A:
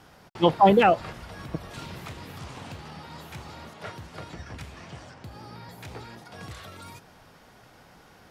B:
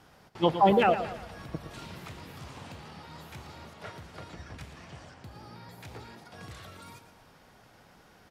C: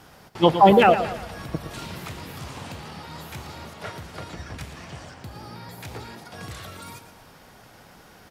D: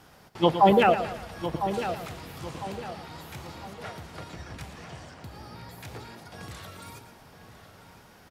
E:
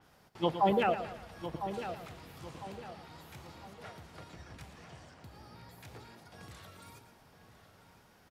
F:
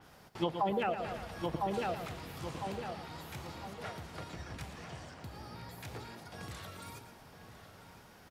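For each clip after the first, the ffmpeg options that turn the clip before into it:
-af "aecho=1:1:114|228|342|456|570:0.282|0.124|0.0546|0.024|0.0106,volume=0.596"
-af "highshelf=f=8400:g=6.5,volume=2.37"
-filter_complex "[0:a]asplit=2[s0][s1];[s1]adelay=1003,lowpass=f=3200:p=1,volume=0.299,asplit=2[s2][s3];[s3]adelay=1003,lowpass=f=3200:p=1,volume=0.4,asplit=2[s4][s5];[s5]adelay=1003,lowpass=f=3200:p=1,volume=0.4,asplit=2[s6][s7];[s7]adelay=1003,lowpass=f=3200:p=1,volume=0.4[s8];[s0][s2][s4][s6][s8]amix=inputs=5:normalize=0,volume=0.596"
-af "adynamicequalizer=threshold=0.00398:dfrequency=4800:dqfactor=0.7:tfrequency=4800:tqfactor=0.7:attack=5:release=100:ratio=0.375:range=2:mode=cutabove:tftype=highshelf,volume=0.355"
-af "acompressor=threshold=0.0178:ratio=6,volume=1.88"

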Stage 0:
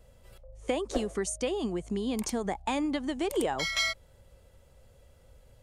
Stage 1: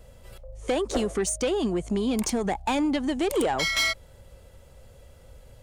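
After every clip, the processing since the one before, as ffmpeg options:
-af "asoftclip=type=tanh:threshold=0.0501,volume=2.37"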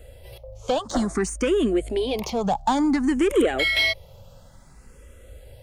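-filter_complex "[0:a]acrossover=split=4100[s0][s1];[s1]acompressor=threshold=0.0126:ratio=4:attack=1:release=60[s2];[s0][s2]amix=inputs=2:normalize=0,asplit=2[s3][s4];[s4]afreqshift=0.56[s5];[s3][s5]amix=inputs=2:normalize=1,volume=2.11"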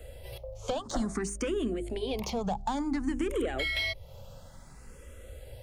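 -filter_complex "[0:a]acrossover=split=140[s0][s1];[s1]acompressor=threshold=0.02:ratio=2.5[s2];[s0][s2]amix=inputs=2:normalize=0,bandreject=f=50:t=h:w=6,bandreject=f=100:t=h:w=6,bandreject=f=150:t=h:w=6,bandreject=f=200:t=h:w=6,bandreject=f=250:t=h:w=6,bandreject=f=300:t=h:w=6,bandreject=f=350:t=h:w=6,bandreject=f=400:t=h:w=6"

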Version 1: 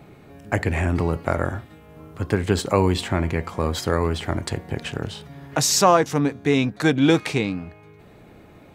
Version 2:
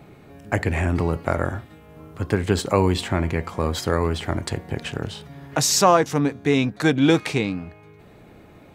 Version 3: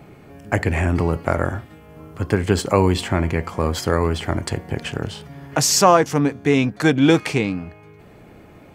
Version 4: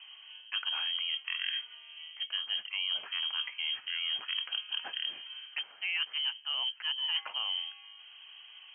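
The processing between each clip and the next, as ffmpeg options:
-af anull
-af "bandreject=f=3800:w=9.9,volume=1.33"
-af "areverse,acompressor=threshold=0.0708:ratio=12,areverse,lowpass=f=2800:t=q:w=0.5098,lowpass=f=2800:t=q:w=0.6013,lowpass=f=2800:t=q:w=0.9,lowpass=f=2800:t=q:w=2.563,afreqshift=-3300,highpass=f=970:p=1,volume=0.473"

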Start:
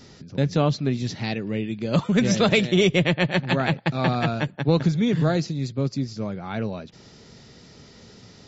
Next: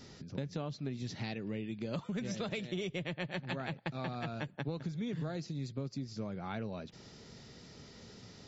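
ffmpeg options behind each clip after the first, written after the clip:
-af "acompressor=threshold=0.0316:ratio=6,volume=0.531"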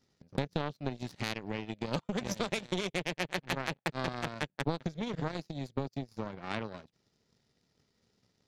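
-af "aeval=exprs='0.0841*(cos(1*acos(clip(val(0)/0.0841,-1,1)))-cos(1*PI/2))+0.00119*(cos(3*acos(clip(val(0)/0.0841,-1,1)))-cos(3*PI/2))+0.000944*(cos(5*acos(clip(val(0)/0.0841,-1,1)))-cos(5*PI/2))+0.0119*(cos(7*acos(clip(val(0)/0.0841,-1,1)))-cos(7*PI/2))':c=same,volume=2.37"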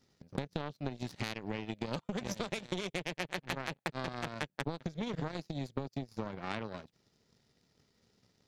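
-af "acompressor=threshold=0.0178:ratio=4,volume=1.33"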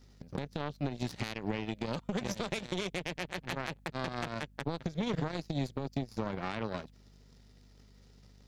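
-af "alimiter=level_in=1.41:limit=0.0631:level=0:latency=1:release=100,volume=0.708,aeval=exprs='val(0)+0.000631*(sin(2*PI*50*n/s)+sin(2*PI*2*50*n/s)/2+sin(2*PI*3*50*n/s)/3+sin(2*PI*4*50*n/s)/4+sin(2*PI*5*50*n/s)/5)':c=same,volume=2"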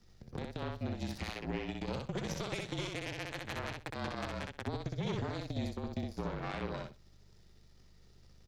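-filter_complex "[0:a]afreqshift=-37,asplit=2[s0][s1];[s1]aecho=0:1:63|126|189:0.708|0.113|0.0181[s2];[s0][s2]amix=inputs=2:normalize=0,volume=0.631"

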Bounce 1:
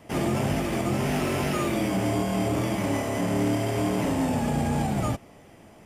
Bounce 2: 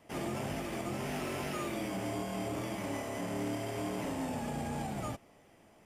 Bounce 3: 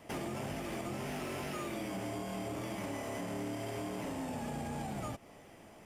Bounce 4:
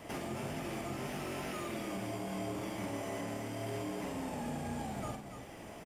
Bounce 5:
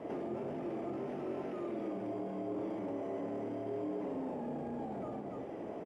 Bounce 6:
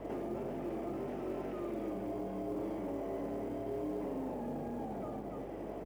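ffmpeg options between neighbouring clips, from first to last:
-af "equalizer=f=89:w=0.35:g=-5,volume=0.355"
-af "acompressor=threshold=0.00794:ratio=10,asoftclip=type=hard:threshold=0.0112,volume=2"
-af "alimiter=level_in=6.31:limit=0.0631:level=0:latency=1:release=372,volume=0.158,aecho=1:1:46|288:0.501|0.398,volume=1.88"
-af "alimiter=level_in=5.01:limit=0.0631:level=0:latency=1:release=19,volume=0.2,bandpass=f=400:t=q:w=1.4:csg=0,volume=3.35"
-af "aeval=exprs='val(0)+0.002*(sin(2*PI*50*n/s)+sin(2*PI*2*50*n/s)/2+sin(2*PI*3*50*n/s)/3+sin(2*PI*4*50*n/s)/4+sin(2*PI*5*50*n/s)/5)':c=same,acrusher=bits=8:mode=log:mix=0:aa=0.000001"

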